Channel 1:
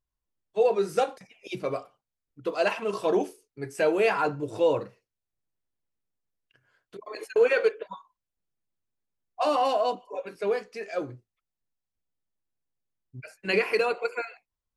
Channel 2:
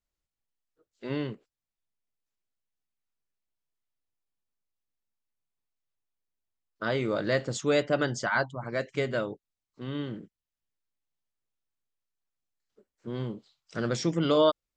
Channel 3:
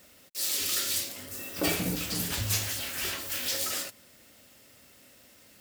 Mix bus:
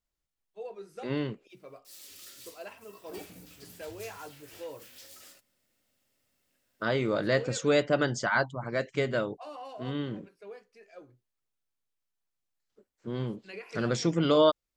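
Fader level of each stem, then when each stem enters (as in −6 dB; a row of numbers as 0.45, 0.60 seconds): −19.0, +0.5, −20.0 decibels; 0.00, 0.00, 1.50 seconds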